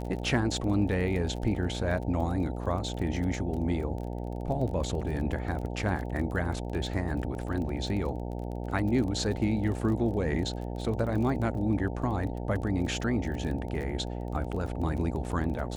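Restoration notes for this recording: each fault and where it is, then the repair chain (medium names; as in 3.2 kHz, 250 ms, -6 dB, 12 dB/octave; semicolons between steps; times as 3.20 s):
buzz 60 Hz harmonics 15 -35 dBFS
crackle 24 per s -35 dBFS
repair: de-click; de-hum 60 Hz, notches 15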